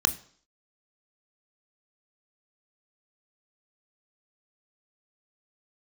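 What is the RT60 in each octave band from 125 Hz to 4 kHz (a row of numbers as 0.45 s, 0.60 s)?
0.45 s, 0.55 s, 0.55 s, 0.55 s, 0.50 s, 0.60 s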